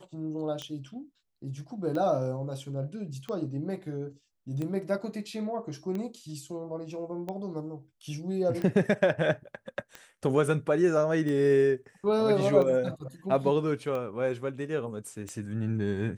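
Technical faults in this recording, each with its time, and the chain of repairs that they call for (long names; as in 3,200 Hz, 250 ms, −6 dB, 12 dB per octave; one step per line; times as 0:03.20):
scratch tick 45 rpm −23 dBFS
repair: click removal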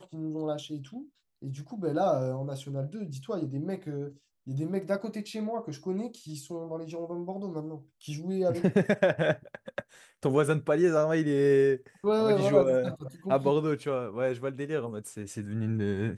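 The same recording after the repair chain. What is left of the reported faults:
none of them is left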